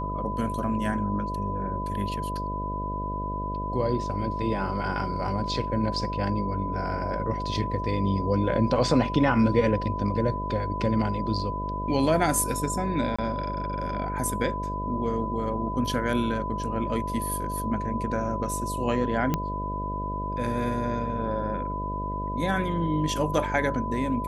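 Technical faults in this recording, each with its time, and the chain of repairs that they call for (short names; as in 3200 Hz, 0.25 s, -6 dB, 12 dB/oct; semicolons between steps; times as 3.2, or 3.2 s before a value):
buzz 50 Hz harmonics 13 -33 dBFS
tone 1000 Hz -31 dBFS
13.16–13.19 gap 25 ms
19.34 pop -11 dBFS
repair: de-click; de-hum 50 Hz, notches 13; notch 1000 Hz, Q 30; interpolate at 13.16, 25 ms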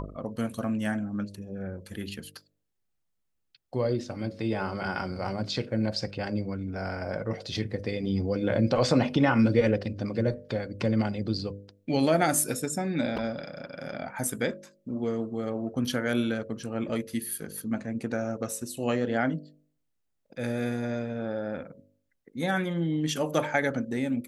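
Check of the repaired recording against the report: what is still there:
none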